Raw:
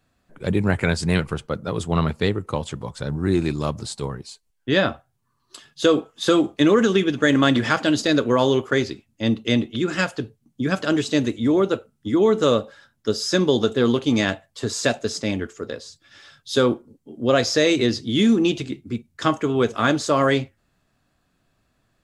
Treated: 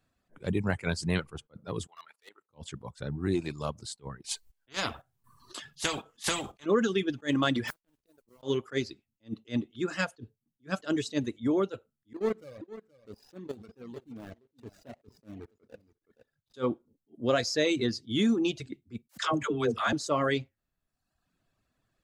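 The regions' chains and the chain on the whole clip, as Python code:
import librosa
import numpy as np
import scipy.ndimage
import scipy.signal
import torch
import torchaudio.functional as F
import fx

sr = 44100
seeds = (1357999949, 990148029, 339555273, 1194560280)

y = fx.chain(x, sr, fx.highpass(hz=1000.0, slope=12),
    fx.level_steps(step_db=15),
    fx.clip_hard(threshold_db=-32.5), at=(1.87, 2.49))
y = fx.chain(y, sr, fx.chopper(hz=2.0, depth_pct=60, duty_pct=55),
    fx.spectral_comp(ratio=4.0), at=(4.24, 6.66))
y = fx.chain(y, sr, fx.gate_flip(shuts_db=-15.0, range_db=-31),
    fx.backlash(play_db=-44.0),
    fx.mod_noise(seeds[0], snr_db=14), at=(7.67, 8.43))
y = fx.chain(y, sr, fx.median_filter(points=41),
    fx.level_steps(step_db=17),
    fx.echo_single(ms=471, db=-14.5), at=(12.13, 16.54))
y = fx.chain(y, sr, fx.dispersion(late='lows', ms=86.0, hz=560.0),
    fx.pre_swell(db_per_s=94.0), at=(19.09, 19.93))
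y = fx.dereverb_blind(y, sr, rt60_s=0.88)
y = fx.attack_slew(y, sr, db_per_s=360.0)
y = y * 10.0 ** (-7.5 / 20.0)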